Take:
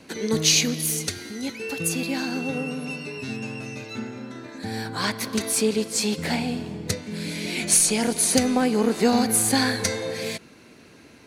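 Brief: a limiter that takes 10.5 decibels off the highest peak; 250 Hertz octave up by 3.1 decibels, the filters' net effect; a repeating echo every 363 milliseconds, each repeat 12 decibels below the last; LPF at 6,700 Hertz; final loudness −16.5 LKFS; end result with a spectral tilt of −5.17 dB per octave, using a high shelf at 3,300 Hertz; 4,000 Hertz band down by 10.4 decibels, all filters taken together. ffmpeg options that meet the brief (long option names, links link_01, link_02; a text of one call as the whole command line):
ffmpeg -i in.wav -af "lowpass=6700,equalizer=frequency=250:width_type=o:gain=3.5,highshelf=frequency=3300:gain=-7,equalizer=frequency=4000:width_type=o:gain=-7,alimiter=limit=-17dB:level=0:latency=1,aecho=1:1:363|726|1089:0.251|0.0628|0.0157,volume=11.5dB" out.wav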